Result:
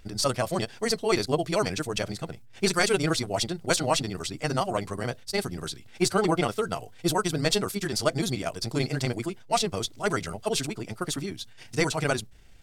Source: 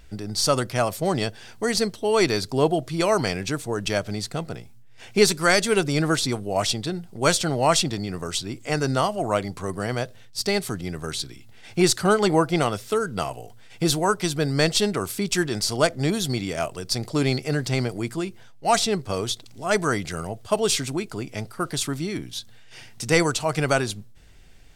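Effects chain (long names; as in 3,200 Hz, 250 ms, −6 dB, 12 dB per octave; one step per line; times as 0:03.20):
time stretch by overlap-add 0.51×, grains 67 ms
level −2.5 dB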